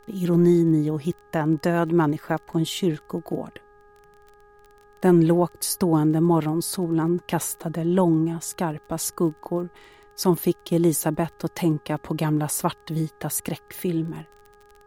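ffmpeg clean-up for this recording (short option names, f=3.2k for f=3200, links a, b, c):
-af "adeclick=t=4,bandreject=f=412.6:t=h:w=4,bandreject=f=825.2:t=h:w=4,bandreject=f=1.2378k:t=h:w=4,bandreject=f=1.6504k:t=h:w=4,agate=range=-21dB:threshold=-45dB"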